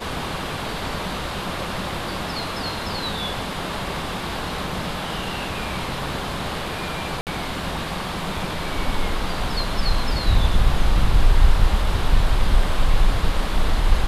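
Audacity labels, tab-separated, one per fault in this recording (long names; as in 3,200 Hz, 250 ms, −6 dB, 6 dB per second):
7.210000	7.270000	drop-out 58 ms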